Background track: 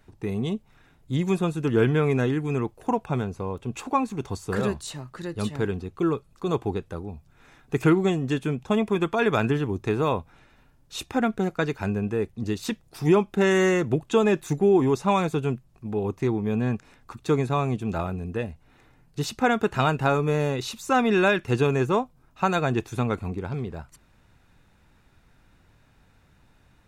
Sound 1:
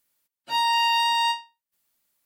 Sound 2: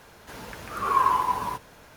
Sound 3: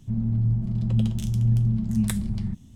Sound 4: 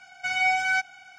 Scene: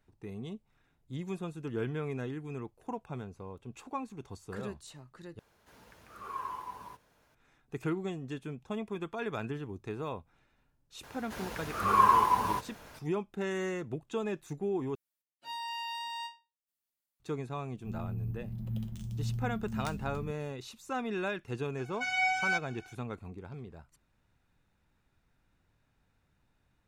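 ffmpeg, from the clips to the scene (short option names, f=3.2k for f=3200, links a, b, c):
-filter_complex "[2:a]asplit=2[a][b];[0:a]volume=-14dB[c];[3:a]acrusher=samples=3:mix=1:aa=0.000001[d];[c]asplit=3[e][f][g];[e]atrim=end=5.394[h];[a]atrim=end=1.96,asetpts=PTS-STARTPTS,volume=-17.5dB[i];[f]atrim=start=7.346:end=14.954[j];[1:a]atrim=end=2.25,asetpts=PTS-STARTPTS,volume=-17dB[k];[g]atrim=start=17.196[l];[b]atrim=end=1.96,asetpts=PTS-STARTPTS,volume=-1dB,afade=t=in:d=0.004:c=hsin,afade=t=out:st=1.956:d=0.004:c=hsin,adelay=11030[m];[d]atrim=end=2.75,asetpts=PTS-STARTPTS,volume=-14dB,afade=t=in:d=0.004:c=hsin,afade=t=out:st=2.746:d=0.004:c=hsin,adelay=17770[n];[4:a]atrim=end=1.18,asetpts=PTS-STARTPTS,volume=-6dB,afade=t=in:d=0.004:c=hsin,afade=t=out:st=1.176:d=0.004:c=hsin,adelay=21770[o];[h][i]acrossfade=d=0.004:c1=hsin:c2=hsin[p];[p][j]acrossfade=d=0.004:c1=hsin:c2=hsin[q];[q][k]acrossfade=d=0.004:c1=hsin:c2=hsin[r];[r][l]acrossfade=d=0.004:c1=hsin:c2=hsin[s];[s][m][n][o]amix=inputs=4:normalize=0"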